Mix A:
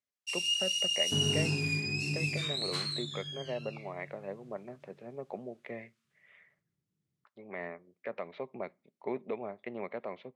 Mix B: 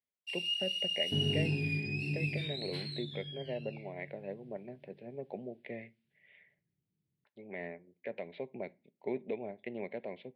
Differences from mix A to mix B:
speech: send +6.0 dB; first sound: add treble shelf 3.3 kHz -8.5 dB; master: add static phaser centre 2.9 kHz, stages 4

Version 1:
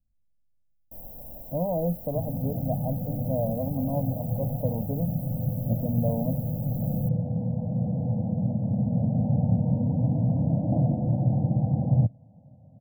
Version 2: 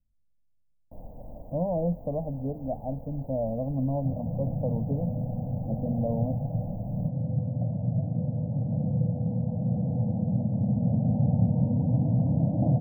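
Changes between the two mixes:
first sound +3.5 dB; second sound: entry +1.90 s; master: add distance through air 300 m

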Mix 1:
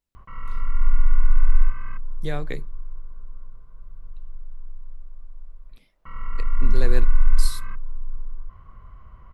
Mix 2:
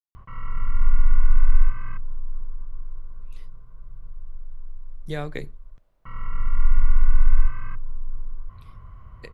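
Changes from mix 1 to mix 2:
speech: entry +2.85 s; background: add peaking EQ 110 Hz +7.5 dB 1 oct

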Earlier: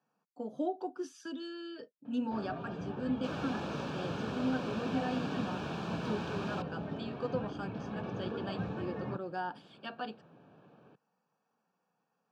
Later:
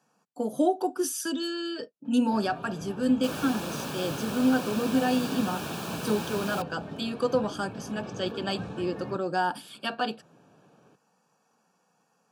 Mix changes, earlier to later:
speech +10.0 dB; second sound +4.0 dB; master: remove distance through air 160 m

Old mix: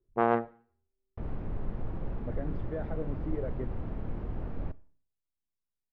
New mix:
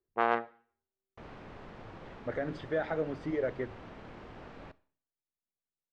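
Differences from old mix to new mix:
speech +10.0 dB; master: add tilt EQ +4.5 dB/octave

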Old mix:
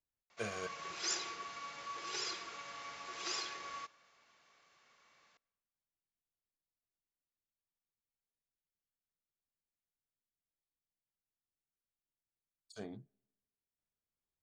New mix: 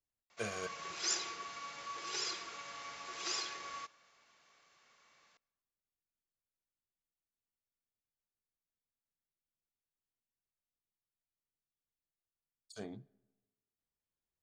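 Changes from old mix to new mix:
speech: send +10.0 dB; master: add treble shelf 7.5 kHz +6.5 dB

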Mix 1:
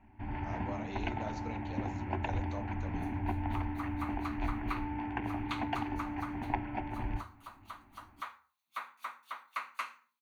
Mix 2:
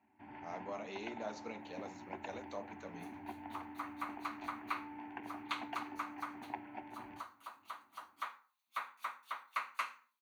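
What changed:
first sound -9.0 dB; master: add high-pass 250 Hz 12 dB/octave

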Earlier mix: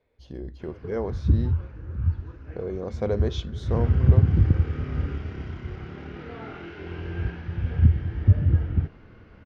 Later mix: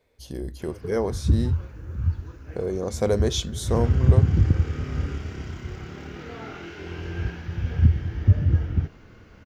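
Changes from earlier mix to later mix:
speech +3.5 dB; master: remove distance through air 230 m

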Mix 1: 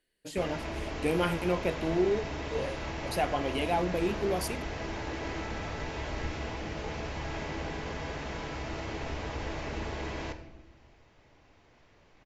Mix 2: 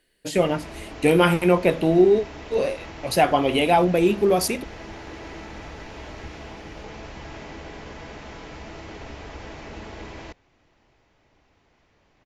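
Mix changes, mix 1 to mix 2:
speech +11.5 dB; reverb: off

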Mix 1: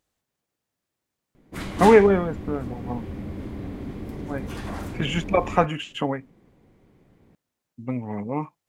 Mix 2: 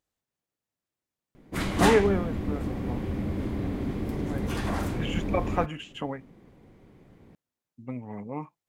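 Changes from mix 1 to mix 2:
speech -7.5 dB; background +3.5 dB

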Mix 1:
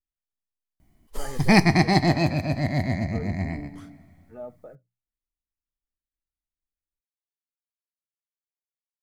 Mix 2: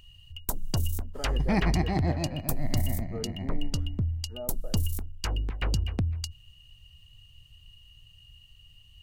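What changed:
first sound: unmuted; second sound -9.0 dB; master: add treble shelf 2.4 kHz -12 dB

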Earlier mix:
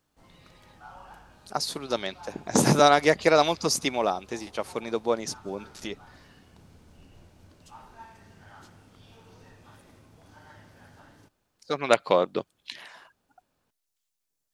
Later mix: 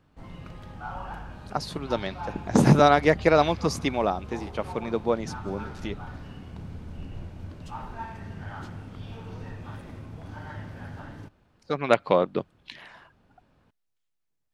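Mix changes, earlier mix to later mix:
background +9.5 dB; master: add tone controls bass +7 dB, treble -11 dB

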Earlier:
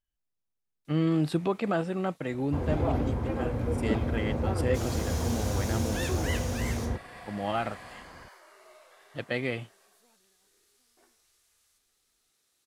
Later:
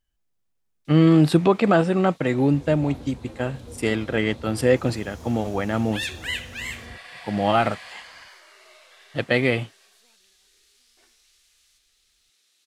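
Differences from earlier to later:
speech +10.5 dB; first sound: add frequency weighting D; second sound -11.5 dB

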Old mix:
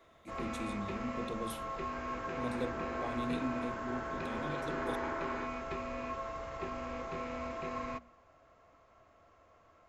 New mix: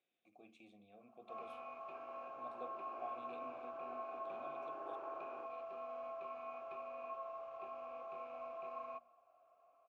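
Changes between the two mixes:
first sound: entry +1.00 s; second sound: add tilt EQ -3 dB/octave; master: add vowel filter a

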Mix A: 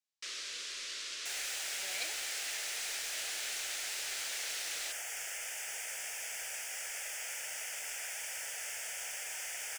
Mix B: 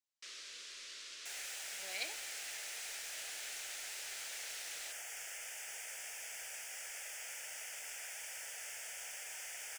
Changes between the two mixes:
first sound -8.0 dB; second sound -5.5 dB

